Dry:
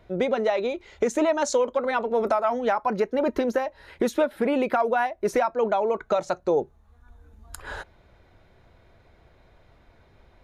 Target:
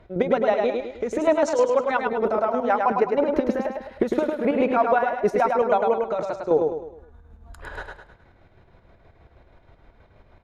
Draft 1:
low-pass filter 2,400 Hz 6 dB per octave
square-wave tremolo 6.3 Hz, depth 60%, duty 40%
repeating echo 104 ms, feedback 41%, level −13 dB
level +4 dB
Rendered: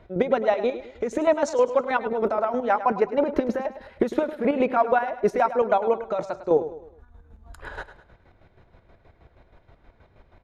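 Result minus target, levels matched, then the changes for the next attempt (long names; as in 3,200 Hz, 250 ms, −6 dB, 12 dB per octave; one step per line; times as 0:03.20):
echo-to-direct −9 dB
change: repeating echo 104 ms, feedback 41%, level −4 dB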